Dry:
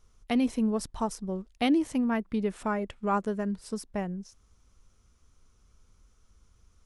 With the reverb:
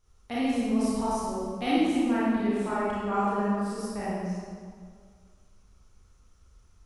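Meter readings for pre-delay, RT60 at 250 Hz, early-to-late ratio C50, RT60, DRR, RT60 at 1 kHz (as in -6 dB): 27 ms, 2.0 s, -5.5 dB, 2.0 s, -10.0 dB, 1.9 s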